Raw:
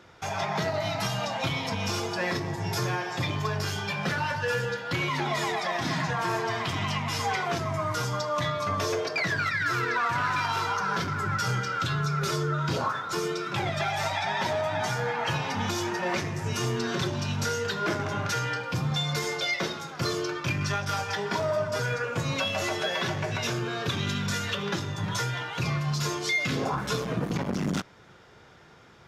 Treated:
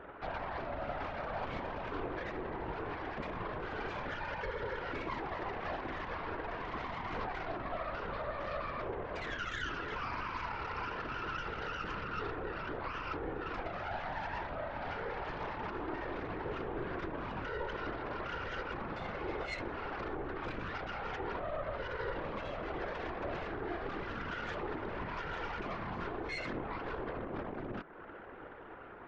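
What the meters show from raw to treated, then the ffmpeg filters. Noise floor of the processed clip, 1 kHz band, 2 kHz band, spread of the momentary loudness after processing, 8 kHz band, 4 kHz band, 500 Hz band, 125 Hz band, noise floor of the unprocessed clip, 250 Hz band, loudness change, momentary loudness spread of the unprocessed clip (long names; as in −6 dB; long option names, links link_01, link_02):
−48 dBFS, −9.0 dB, −11.0 dB, 2 LU, below −25 dB, −17.5 dB, −8.5 dB, −16.5 dB, −51 dBFS, −10.5 dB, −11.0 dB, 4 LU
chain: -af "lowpass=frequency=1700:width=0.5412,lowpass=frequency=1700:width=1.3066,lowshelf=frequency=230:width_type=q:width=1.5:gain=-10.5,acompressor=threshold=-37dB:ratio=8,alimiter=level_in=14dB:limit=-24dB:level=0:latency=1:release=36,volume=-14dB,flanger=delay=4.6:depth=6.2:regen=84:speed=0.16:shape=triangular,aeval=exprs='0.01*(cos(1*acos(clip(val(0)/0.01,-1,1)))-cos(1*PI/2))+0.00282*(cos(4*acos(clip(val(0)/0.01,-1,1)))-cos(4*PI/2))':channel_layout=same,afftfilt=real='hypot(re,im)*cos(2*PI*random(0))':imag='hypot(re,im)*sin(2*PI*random(1))':win_size=512:overlap=0.75,volume=15dB"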